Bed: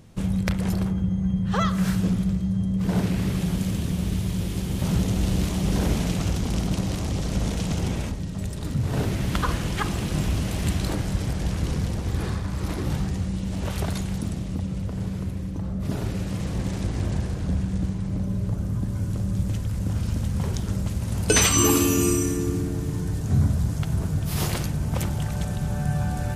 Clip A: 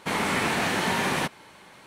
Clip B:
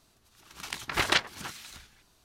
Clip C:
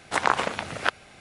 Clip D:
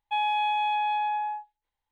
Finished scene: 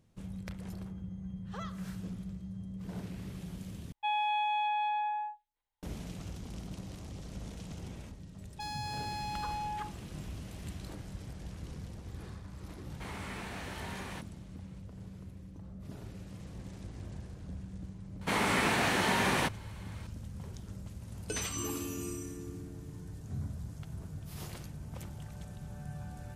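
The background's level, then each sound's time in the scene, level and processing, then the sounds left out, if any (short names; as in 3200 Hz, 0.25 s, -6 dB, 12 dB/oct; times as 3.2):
bed -18 dB
3.92 replace with D -5 dB
8.48 add D -8 dB + wavefolder -26 dBFS
12.94 add A -18 dB
18.21 add A -3.5 dB
not used: B, C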